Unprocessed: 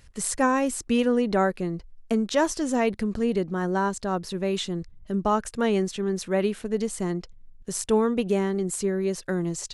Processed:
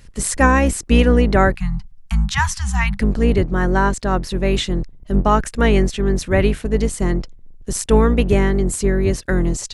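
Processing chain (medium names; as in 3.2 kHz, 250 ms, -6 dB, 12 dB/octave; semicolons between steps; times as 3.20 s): octave divider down 2 oct, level +4 dB; 1.56–3.00 s: Chebyshev band-stop 200–780 Hz, order 5; dynamic bell 2 kHz, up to +7 dB, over -45 dBFS, Q 1.5; trim +6 dB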